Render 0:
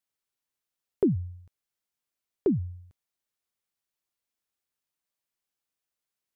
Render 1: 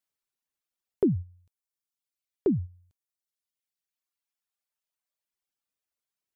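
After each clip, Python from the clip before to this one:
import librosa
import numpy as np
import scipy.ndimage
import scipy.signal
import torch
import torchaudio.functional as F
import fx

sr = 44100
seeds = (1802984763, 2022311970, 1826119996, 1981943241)

y = fx.dereverb_blind(x, sr, rt60_s=1.9)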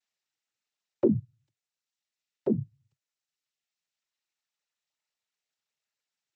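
y = fx.noise_vocoder(x, sr, seeds[0], bands=12)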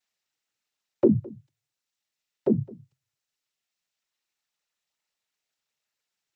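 y = x + 10.0 ** (-22.5 / 20.0) * np.pad(x, (int(212 * sr / 1000.0), 0))[:len(x)]
y = F.gain(torch.from_numpy(y), 4.0).numpy()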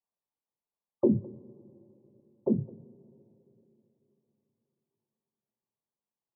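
y = fx.brickwall_lowpass(x, sr, high_hz=1200.0)
y = fx.rev_double_slope(y, sr, seeds[1], early_s=0.24, late_s=3.7, knee_db=-22, drr_db=9.5)
y = F.gain(torch.from_numpy(y), -5.0).numpy()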